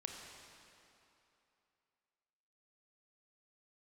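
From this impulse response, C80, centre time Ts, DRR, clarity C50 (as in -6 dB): 3.0 dB, 97 ms, 1.5 dB, 2.0 dB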